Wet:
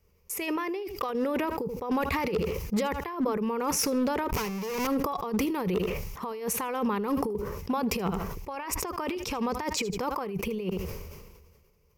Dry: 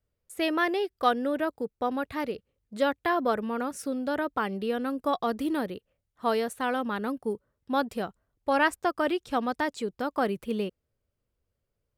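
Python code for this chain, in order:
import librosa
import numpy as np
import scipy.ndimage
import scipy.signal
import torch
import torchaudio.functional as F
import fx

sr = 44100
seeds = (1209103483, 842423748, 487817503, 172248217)

y = fx.clip_1bit(x, sr, at=(4.32, 4.87))
y = fx.ripple_eq(y, sr, per_octave=0.8, db=11)
y = fx.over_compress(y, sr, threshold_db=-36.0, ratio=-1.0)
y = np.clip(y, -10.0 ** (-27.0 / 20.0), 10.0 ** (-27.0 / 20.0))
y = fx.echo_feedback(y, sr, ms=78, feedback_pct=23, wet_db=-20.5)
y = fx.sustainer(y, sr, db_per_s=36.0)
y = y * 10.0 ** (5.0 / 20.0)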